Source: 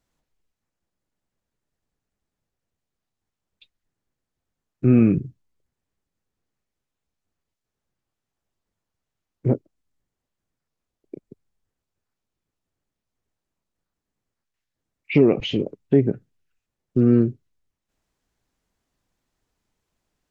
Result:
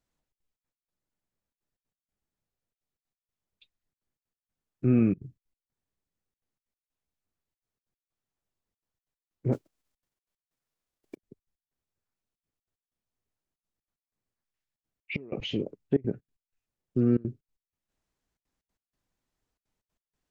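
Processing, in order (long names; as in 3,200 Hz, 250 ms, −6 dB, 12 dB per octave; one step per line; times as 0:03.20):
0:09.52–0:11.16: spectral envelope flattened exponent 0.6
gate pattern "xxxx.xx.x..xxxx" 187 BPM −24 dB
level −7 dB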